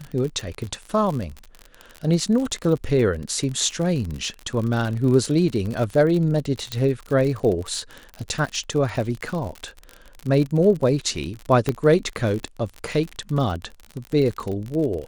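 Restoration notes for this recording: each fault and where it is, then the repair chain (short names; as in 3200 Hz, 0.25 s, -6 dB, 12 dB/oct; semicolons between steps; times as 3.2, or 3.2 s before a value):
crackle 52/s -27 dBFS
6.72 pop -12 dBFS
8.46–8.47 gap 6.4 ms
11.69 pop -9 dBFS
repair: de-click; interpolate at 8.46, 6.4 ms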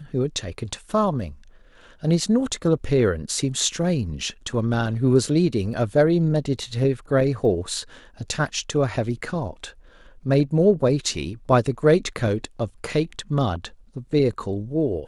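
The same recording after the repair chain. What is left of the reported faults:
11.69 pop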